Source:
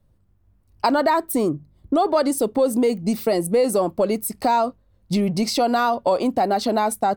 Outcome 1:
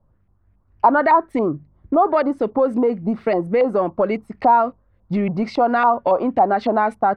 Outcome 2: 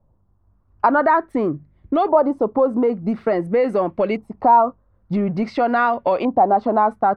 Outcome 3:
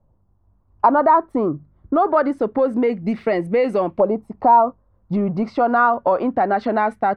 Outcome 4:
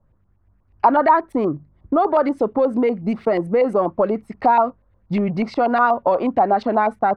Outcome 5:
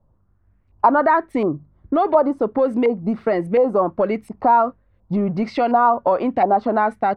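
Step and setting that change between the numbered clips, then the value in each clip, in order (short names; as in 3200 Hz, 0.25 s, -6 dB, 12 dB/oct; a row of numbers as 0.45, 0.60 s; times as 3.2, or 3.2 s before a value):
LFO low-pass, rate: 3.6, 0.48, 0.25, 8.3, 1.4 Hz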